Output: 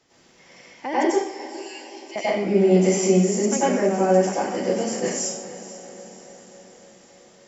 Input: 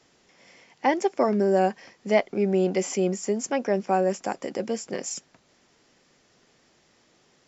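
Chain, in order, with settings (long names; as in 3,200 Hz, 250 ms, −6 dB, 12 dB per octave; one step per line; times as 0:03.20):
0:01.09–0:02.16: Butterworth high-pass 2,400 Hz
brickwall limiter −16 dBFS, peak gain reduction 7 dB
on a send: feedback delay with all-pass diffusion 460 ms, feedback 58%, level −14.5 dB
on the sum: dense smooth reverb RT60 0.68 s, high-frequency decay 0.95×, pre-delay 80 ms, DRR −9 dB
level −3 dB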